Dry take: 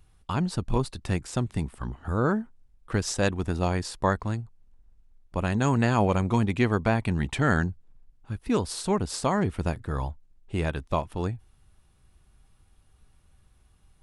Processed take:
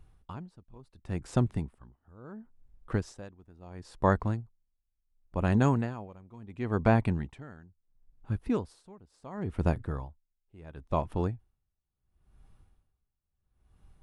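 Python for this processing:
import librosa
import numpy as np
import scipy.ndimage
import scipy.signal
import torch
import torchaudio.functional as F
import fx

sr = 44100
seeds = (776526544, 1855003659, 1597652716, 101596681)

y = fx.high_shelf(x, sr, hz=2000.0, db=-10.5)
y = y * 10.0 ** (-29 * (0.5 - 0.5 * np.cos(2.0 * np.pi * 0.72 * np.arange(len(y)) / sr)) / 20.0)
y = F.gain(torch.from_numpy(y), 2.0).numpy()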